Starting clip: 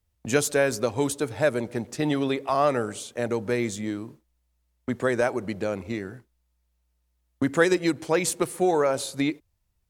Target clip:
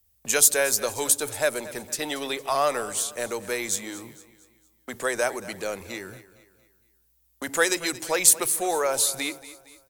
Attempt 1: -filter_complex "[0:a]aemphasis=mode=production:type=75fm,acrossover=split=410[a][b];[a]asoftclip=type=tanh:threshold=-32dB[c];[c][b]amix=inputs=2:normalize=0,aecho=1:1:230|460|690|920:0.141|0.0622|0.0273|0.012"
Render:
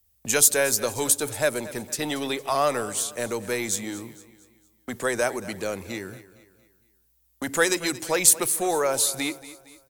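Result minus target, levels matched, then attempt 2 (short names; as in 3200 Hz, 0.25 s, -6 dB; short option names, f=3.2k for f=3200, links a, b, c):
soft clip: distortion -5 dB
-filter_complex "[0:a]aemphasis=mode=production:type=75fm,acrossover=split=410[a][b];[a]asoftclip=type=tanh:threshold=-42.5dB[c];[c][b]amix=inputs=2:normalize=0,aecho=1:1:230|460|690|920:0.141|0.0622|0.0273|0.012"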